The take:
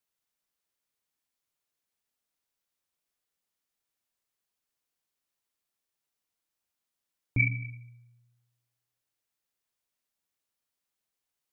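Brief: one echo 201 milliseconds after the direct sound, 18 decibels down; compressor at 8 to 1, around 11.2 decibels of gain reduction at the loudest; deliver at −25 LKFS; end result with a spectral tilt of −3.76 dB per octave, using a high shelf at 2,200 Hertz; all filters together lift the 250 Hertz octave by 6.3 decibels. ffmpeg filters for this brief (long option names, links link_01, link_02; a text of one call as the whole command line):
ffmpeg -i in.wav -af "equalizer=frequency=250:width_type=o:gain=8,highshelf=frequency=2200:gain=4,acompressor=threshold=-29dB:ratio=8,aecho=1:1:201:0.126,volume=13dB" out.wav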